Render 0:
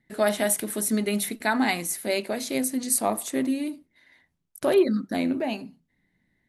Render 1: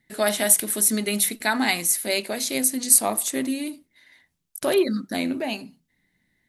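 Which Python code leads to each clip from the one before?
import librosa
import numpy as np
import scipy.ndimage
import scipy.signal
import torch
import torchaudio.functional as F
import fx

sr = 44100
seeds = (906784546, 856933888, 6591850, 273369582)

y = fx.high_shelf(x, sr, hz=2300.0, db=10.0)
y = y * 10.0 ** (-1.0 / 20.0)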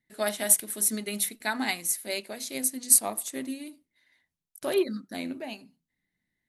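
y = fx.upward_expand(x, sr, threshold_db=-32.0, expansion=1.5)
y = y * 10.0 ** (-2.5 / 20.0)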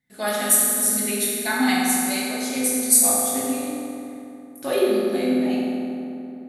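y = fx.rev_fdn(x, sr, rt60_s=2.9, lf_ratio=1.25, hf_ratio=0.55, size_ms=12.0, drr_db=-8.0)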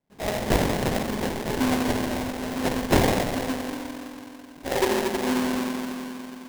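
y = fx.sample_hold(x, sr, seeds[0], rate_hz=1300.0, jitter_pct=20)
y = y * 10.0 ** (-3.5 / 20.0)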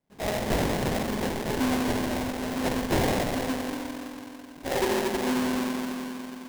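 y = 10.0 ** (-19.5 / 20.0) * np.tanh(x / 10.0 ** (-19.5 / 20.0))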